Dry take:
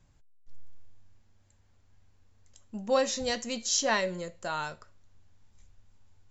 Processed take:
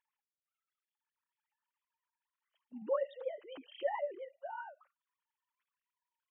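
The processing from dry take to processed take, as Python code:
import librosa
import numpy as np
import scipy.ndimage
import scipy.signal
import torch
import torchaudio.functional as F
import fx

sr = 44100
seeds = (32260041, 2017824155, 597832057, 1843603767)

y = fx.sine_speech(x, sr)
y = fx.pitch_keep_formants(y, sr, semitones=1.0)
y = y * 10.0 ** (-5.0 / 20.0)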